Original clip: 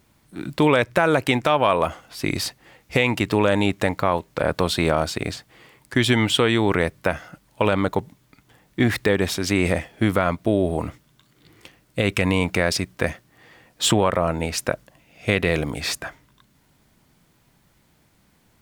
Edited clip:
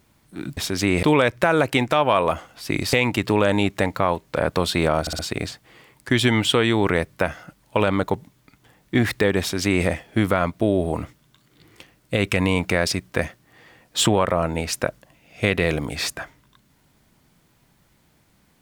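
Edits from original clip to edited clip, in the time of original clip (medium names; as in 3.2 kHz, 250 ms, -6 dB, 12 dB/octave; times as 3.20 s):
2.47–2.96 s: delete
5.04 s: stutter 0.06 s, 4 plays
9.25–9.71 s: copy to 0.57 s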